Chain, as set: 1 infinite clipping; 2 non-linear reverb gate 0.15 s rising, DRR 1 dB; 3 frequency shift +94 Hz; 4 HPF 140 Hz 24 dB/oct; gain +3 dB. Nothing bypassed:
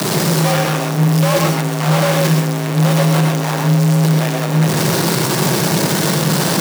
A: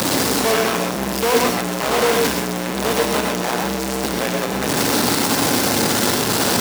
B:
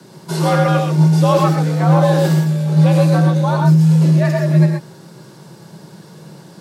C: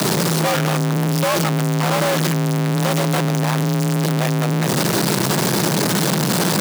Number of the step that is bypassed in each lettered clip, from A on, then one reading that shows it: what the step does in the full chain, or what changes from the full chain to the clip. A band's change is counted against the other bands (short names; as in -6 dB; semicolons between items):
3, 125 Hz band -15.0 dB; 1, distortion 0 dB; 2, 125 Hz band -2.0 dB